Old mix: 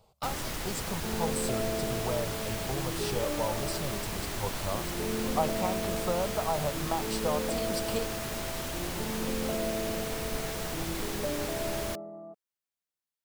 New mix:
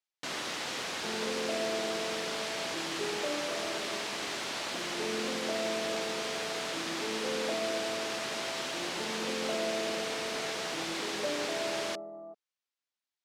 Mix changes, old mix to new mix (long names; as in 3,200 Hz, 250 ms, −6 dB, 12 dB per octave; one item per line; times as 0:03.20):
speech: muted
first sound: add high-shelf EQ 2,100 Hz +7.5 dB
master: add band-pass filter 290–5,000 Hz